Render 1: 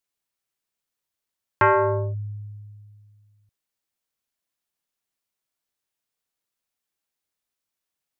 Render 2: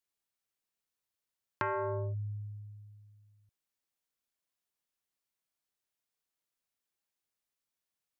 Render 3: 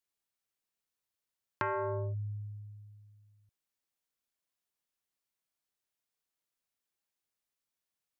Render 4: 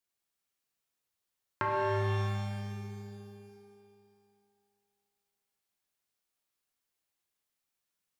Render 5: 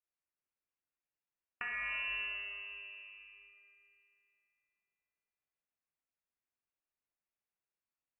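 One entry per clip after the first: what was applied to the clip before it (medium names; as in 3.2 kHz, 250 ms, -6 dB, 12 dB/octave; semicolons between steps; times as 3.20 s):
compression 5:1, threshold -28 dBFS, peak gain reduction 12 dB; trim -5 dB
no audible change
pitch-shifted reverb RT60 2.3 s, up +12 st, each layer -8 dB, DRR -0.5 dB
frequency inversion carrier 2.8 kHz; trim -8.5 dB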